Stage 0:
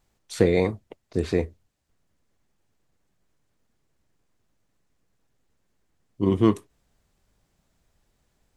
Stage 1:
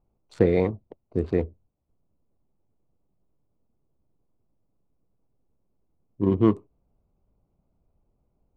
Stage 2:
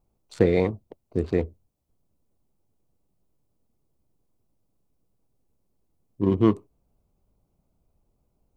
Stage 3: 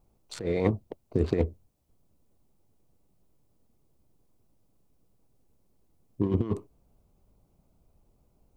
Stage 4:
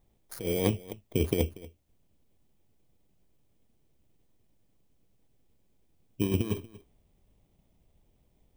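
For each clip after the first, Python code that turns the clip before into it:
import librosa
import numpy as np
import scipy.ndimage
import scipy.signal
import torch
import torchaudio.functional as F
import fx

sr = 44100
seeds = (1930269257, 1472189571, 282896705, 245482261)

y1 = fx.wiener(x, sr, points=25)
y1 = fx.lowpass(y1, sr, hz=1600.0, slope=6)
y2 = fx.high_shelf(y1, sr, hz=3200.0, db=9.0)
y3 = fx.over_compress(y2, sr, threshold_db=-24.0, ratio=-0.5)
y4 = fx.bit_reversed(y3, sr, seeds[0], block=16)
y4 = y4 + 10.0 ** (-19.5 / 20.0) * np.pad(y4, (int(237 * sr / 1000.0), 0))[:len(y4)]
y4 = y4 * librosa.db_to_amplitude(-1.5)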